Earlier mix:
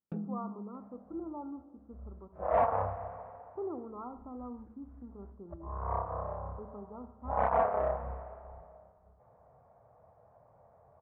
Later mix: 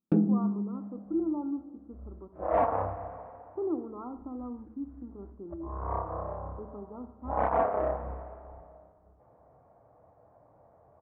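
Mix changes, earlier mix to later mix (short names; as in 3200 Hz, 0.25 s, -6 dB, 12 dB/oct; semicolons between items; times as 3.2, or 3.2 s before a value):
first sound +11.0 dB; second sound: send +6.0 dB; master: add bell 310 Hz +13 dB 0.5 oct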